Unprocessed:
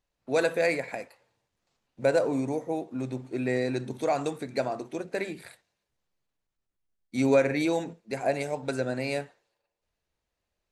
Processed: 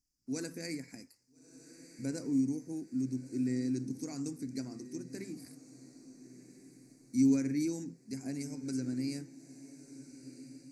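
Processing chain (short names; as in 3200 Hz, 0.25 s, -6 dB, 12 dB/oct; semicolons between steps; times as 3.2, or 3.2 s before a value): EQ curve 190 Hz 0 dB, 270 Hz +6 dB, 590 Hz -24 dB, 2200 Hz -11 dB, 3500 Hz -24 dB, 5000 Hz +13 dB, 10000 Hz +7 dB; on a send: diffused feedback echo 1.346 s, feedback 44%, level -15.5 dB; on the sum: dynamic EQ 8300 Hz, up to -7 dB, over -53 dBFS, Q 0.81; gain -5 dB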